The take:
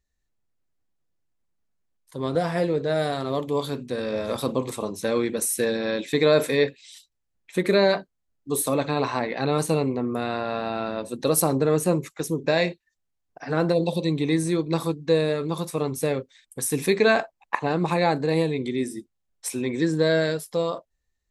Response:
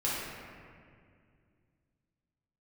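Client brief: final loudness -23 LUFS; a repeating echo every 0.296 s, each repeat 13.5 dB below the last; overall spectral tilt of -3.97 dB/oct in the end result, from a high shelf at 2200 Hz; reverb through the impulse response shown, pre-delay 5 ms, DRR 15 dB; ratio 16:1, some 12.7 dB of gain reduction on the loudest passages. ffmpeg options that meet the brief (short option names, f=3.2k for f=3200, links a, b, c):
-filter_complex "[0:a]highshelf=f=2.2k:g=7.5,acompressor=threshold=-23dB:ratio=16,aecho=1:1:296|592:0.211|0.0444,asplit=2[a][b];[1:a]atrim=start_sample=2205,adelay=5[c];[b][c]afir=irnorm=-1:irlink=0,volume=-23dB[d];[a][d]amix=inputs=2:normalize=0,volume=5.5dB"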